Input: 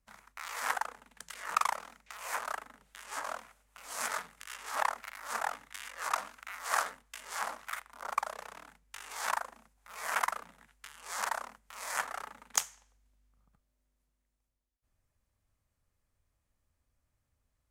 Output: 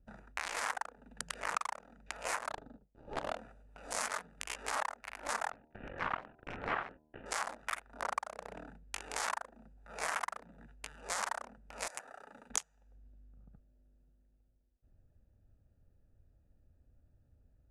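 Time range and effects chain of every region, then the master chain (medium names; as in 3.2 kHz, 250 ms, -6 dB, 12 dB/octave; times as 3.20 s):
2.49–3.38 s: median filter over 25 samples + expander -58 dBFS
5.51–7.26 s: CVSD coder 16 kbps + gate -55 dBFS, range -22 dB + de-hum 76.87 Hz, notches 14
11.87–12.50 s: high-pass 540 Hz 6 dB/octave + compression 4:1, threshold -48 dBFS + treble shelf 4.9 kHz +9.5 dB
whole clip: local Wiener filter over 41 samples; steep low-pass 11 kHz 36 dB/octave; compression 10:1, threshold -46 dBFS; trim +13 dB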